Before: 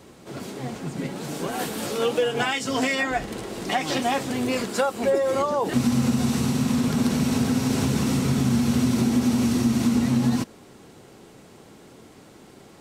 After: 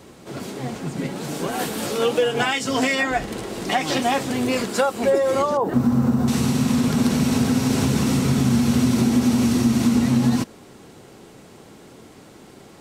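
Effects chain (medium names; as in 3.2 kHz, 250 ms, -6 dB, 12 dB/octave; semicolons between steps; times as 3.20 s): 5.57–6.28 s: high-order bell 4.9 kHz -14.5 dB 2.9 oct; trim +3 dB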